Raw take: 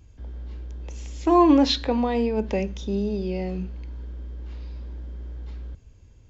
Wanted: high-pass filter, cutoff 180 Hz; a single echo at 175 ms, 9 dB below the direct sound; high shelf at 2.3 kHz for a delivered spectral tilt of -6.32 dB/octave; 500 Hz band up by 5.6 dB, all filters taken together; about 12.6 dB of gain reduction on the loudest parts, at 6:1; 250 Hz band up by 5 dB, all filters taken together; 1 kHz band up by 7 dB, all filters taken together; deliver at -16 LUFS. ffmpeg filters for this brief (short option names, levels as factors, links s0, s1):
-af "highpass=180,equalizer=f=250:t=o:g=5.5,equalizer=f=500:t=o:g=4,equalizer=f=1000:t=o:g=8,highshelf=f=2300:g=-7,acompressor=threshold=0.1:ratio=6,aecho=1:1:175:0.355,volume=2.82"